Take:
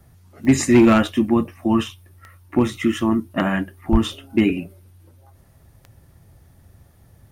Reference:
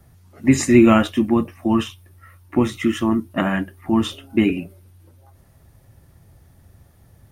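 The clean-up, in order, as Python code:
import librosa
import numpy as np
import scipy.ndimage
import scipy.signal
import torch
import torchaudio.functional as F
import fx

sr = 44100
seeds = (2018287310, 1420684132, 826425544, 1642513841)

y = fx.fix_declip(x, sr, threshold_db=-7.0)
y = fx.fix_declick_ar(y, sr, threshold=10.0)
y = fx.highpass(y, sr, hz=140.0, slope=24, at=(3.91, 4.03), fade=0.02)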